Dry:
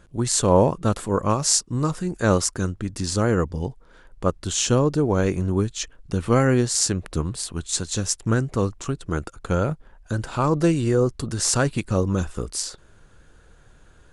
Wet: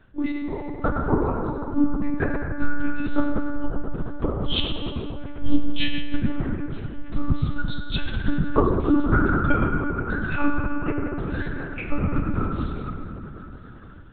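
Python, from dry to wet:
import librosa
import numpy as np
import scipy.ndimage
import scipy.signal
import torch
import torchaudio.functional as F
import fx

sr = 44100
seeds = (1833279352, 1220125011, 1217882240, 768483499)

p1 = fx.noise_reduce_blind(x, sr, reduce_db=14)
p2 = fx.hum_notches(p1, sr, base_hz=60, count=2, at=(7.45, 8.2))
p3 = fx.band_shelf(p2, sr, hz=760.0, db=-14.0, octaves=1.7, at=(10.15, 10.69))
p4 = fx.level_steps(p3, sr, step_db=23)
p5 = p3 + F.gain(torch.from_numpy(p4), 2.5).numpy()
p6 = fx.gate_flip(p5, sr, shuts_db=-13.0, range_db=-31)
p7 = p6 + fx.echo_single(p6, sr, ms=957, db=-23.0, dry=0)
p8 = fx.rev_fdn(p7, sr, rt60_s=3.8, lf_ratio=1.0, hf_ratio=0.35, size_ms=65.0, drr_db=-3.5)
p9 = fx.lpc_monotone(p8, sr, seeds[0], pitch_hz=290.0, order=10)
y = F.gain(torch.from_numpy(p9), 5.5).numpy()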